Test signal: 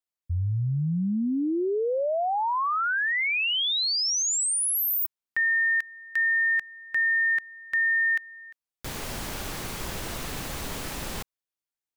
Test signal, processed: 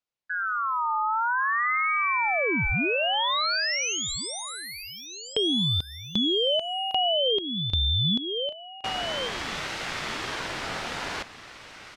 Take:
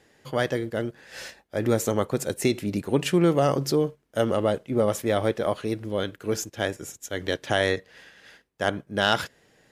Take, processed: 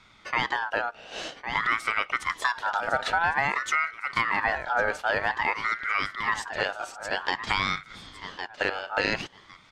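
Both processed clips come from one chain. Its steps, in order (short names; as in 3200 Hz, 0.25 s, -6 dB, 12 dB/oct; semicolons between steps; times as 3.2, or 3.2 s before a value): HPF 210 Hz 6 dB/oct; feedback echo 1.106 s, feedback 20%, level -13 dB; compressor 3:1, threshold -29 dBFS; LPF 4100 Hz 12 dB/oct; ring modulator with a swept carrier 1400 Hz, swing 25%, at 0.51 Hz; gain +8 dB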